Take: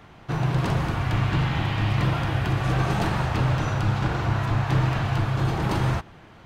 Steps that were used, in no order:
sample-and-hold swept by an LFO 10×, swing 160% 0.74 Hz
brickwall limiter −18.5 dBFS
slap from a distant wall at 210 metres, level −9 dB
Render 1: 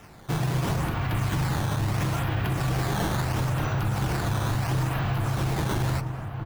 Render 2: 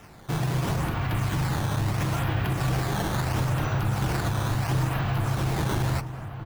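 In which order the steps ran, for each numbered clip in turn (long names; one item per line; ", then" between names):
sample-and-hold swept by an LFO, then slap from a distant wall, then brickwall limiter
brickwall limiter, then sample-and-hold swept by an LFO, then slap from a distant wall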